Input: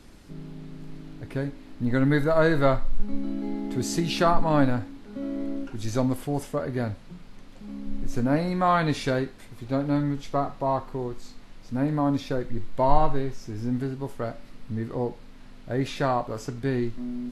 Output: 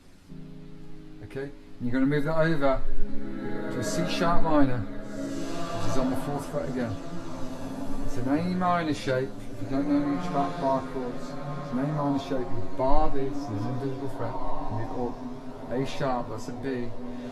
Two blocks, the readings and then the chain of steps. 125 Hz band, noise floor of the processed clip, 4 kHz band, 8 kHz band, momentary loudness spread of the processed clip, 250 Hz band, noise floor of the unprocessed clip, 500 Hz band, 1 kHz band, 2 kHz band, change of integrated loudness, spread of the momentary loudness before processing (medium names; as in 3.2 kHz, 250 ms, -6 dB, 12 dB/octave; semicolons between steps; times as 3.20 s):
-4.0 dB, -42 dBFS, -2.0 dB, -2.0 dB, 13 LU, -1.5 dB, -46 dBFS, -2.0 dB, -2.5 dB, -2.5 dB, -2.5 dB, 17 LU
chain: echo that smears into a reverb 1614 ms, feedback 44%, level -7.5 dB; chorus voices 2, 0.22 Hz, delay 11 ms, depth 1.3 ms